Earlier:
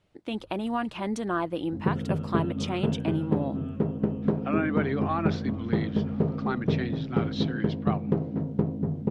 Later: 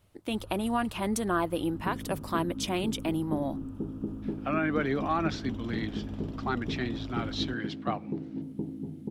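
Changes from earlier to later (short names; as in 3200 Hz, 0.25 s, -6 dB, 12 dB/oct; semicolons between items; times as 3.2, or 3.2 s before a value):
first sound +10.5 dB; second sound: add vocal tract filter u; master: remove air absorption 94 m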